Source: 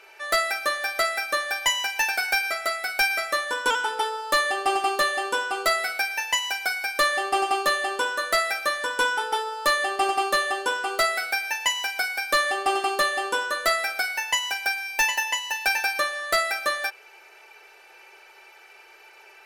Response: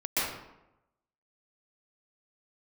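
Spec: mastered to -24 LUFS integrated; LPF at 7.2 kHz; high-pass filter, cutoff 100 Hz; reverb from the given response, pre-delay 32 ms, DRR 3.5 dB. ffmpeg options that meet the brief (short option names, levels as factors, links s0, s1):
-filter_complex "[0:a]highpass=100,lowpass=7200,asplit=2[s0][s1];[1:a]atrim=start_sample=2205,adelay=32[s2];[s1][s2]afir=irnorm=-1:irlink=0,volume=0.2[s3];[s0][s3]amix=inputs=2:normalize=0,volume=0.841"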